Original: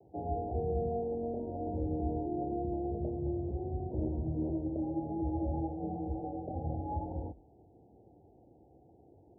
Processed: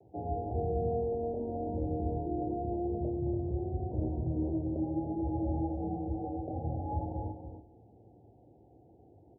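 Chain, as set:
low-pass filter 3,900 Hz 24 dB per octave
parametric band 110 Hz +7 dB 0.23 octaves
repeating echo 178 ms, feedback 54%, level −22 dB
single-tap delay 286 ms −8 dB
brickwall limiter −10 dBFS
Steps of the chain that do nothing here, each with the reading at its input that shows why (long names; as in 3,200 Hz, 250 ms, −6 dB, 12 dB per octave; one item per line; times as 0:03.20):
low-pass filter 3,900 Hz: nothing at its input above 850 Hz
brickwall limiter −10 dBFS: peak of its input −21.0 dBFS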